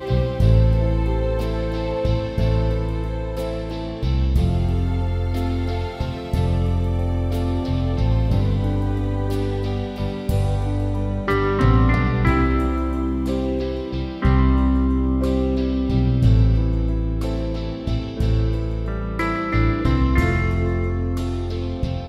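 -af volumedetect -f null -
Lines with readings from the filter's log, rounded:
mean_volume: -19.7 dB
max_volume: -4.4 dB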